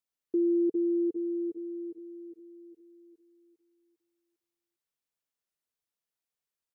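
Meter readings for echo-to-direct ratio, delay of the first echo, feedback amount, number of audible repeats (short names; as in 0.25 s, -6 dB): -8.0 dB, 0.402 s, 40%, 4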